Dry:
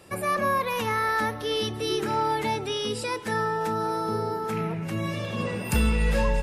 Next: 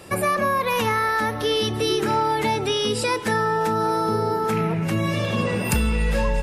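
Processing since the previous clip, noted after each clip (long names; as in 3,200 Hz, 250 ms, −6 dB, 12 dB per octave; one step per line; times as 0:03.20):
downward compressor 4 to 1, threshold −27 dBFS, peak gain reduction 8 dB
level +8.5 dB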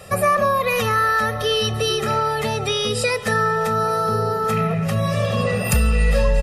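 comb filter 1.6 ms, depth 94%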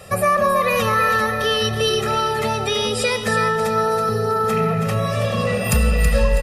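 repeating echo 325 ms, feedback 33%, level −7.5 dB
convolution reverb RT60 0.95 s, pre-delay 71 ms, DRR 16.5 dB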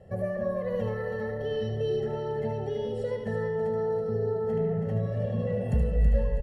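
moving average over 36 samples
single-tap delay 75 ms −6.5 dB
level −7 dB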